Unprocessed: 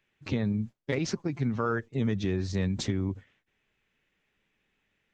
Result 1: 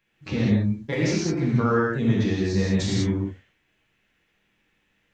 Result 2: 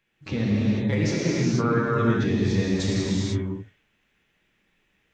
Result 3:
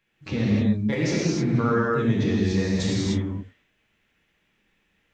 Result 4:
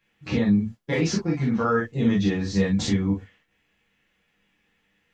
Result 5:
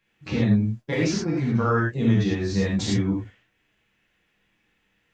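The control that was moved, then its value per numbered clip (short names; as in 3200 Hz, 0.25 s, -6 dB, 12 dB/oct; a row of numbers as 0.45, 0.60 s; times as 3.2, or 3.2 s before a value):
non-linear reverb, gate: 220, 520, 330, 80, 130 ms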